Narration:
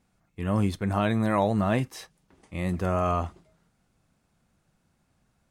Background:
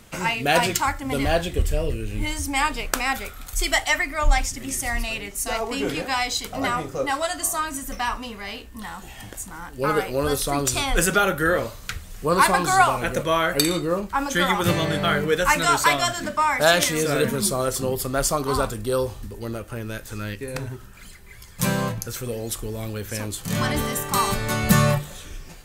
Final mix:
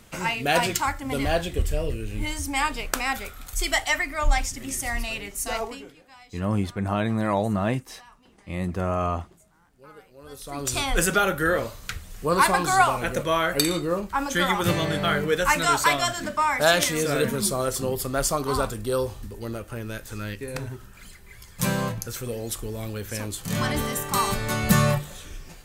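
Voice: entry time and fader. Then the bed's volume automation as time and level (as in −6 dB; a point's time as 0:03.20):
5.95 s, 0.0 dB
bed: 0:05.64 −2.5 dB
0:05.95 −26 dB
0:10.15 −26 dB
0:10.75 −2 dB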